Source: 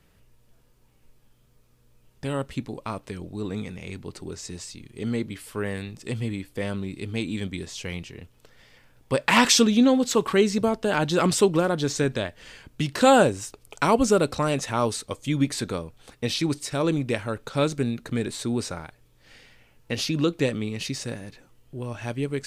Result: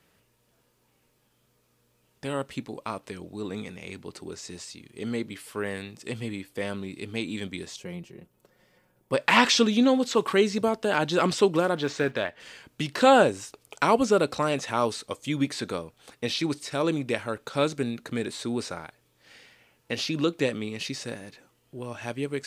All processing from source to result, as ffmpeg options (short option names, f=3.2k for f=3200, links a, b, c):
-filter_complex "[0:a]asettb=1/sr,asplit=3[a][b][c];[a]atrim=end=7.764[d];[b]atrim=start=7.76:end=9.13,asetpts=PTS-STARTPTS,afade=t=in:d=0.004:c=qsin,afade=t=out:st=1.366:d=0.004:c=qsin,equalizer=f=3.5k:w=0.32:g=-14,aecho=1:1:5.5:0.64,atrim=end_sample=60417[e];[c]atrim=start=9.126[f];[d][e]acrossfade=d=0.004:c1=hsin:c2=qsin[g];[g][f]acrossfade=d=0.004:c1=qsin:c2=hsin,asettb=1/sr,asplit=3[h][i][j];[h]atrim=end=11.764[k];[i]atrim=start=11.76:end=12.4,asetpts=PTS-STARTPTS,afade=t=in:d=0.004:c=qsin,afade=t=out:st=0.636:d=0.004:c=qsin,acrusher=bits=6:mode=log:mix=0:aa=0.000001,asplit=2[l][m];[m]highpass=f=720:p=1,volume=9dB,asoftclip=type=tanh:threshold=-11.5dB[n];[l][n]amix=inputs=2:normalize=0,lowpass=f=5.3k:p=1,volume=-6dB,bass=f=250:g=3,treble=f=4k:g=-12[o];[j]atrim=start=12.396[p];[k][o]acrossfade=d=0.004:c1=hsin:c2=qsin[q];[q][p]acrossfade=d=0.004:c1=qsin:c2=hsin,acrossover=split=5400[r][s];[s]acompressor=threshold=-42dB:ratio=4:attack=1:release=60[t];[r][t]amix=inputs=2:normalize=0,highpass=f=260:p=1"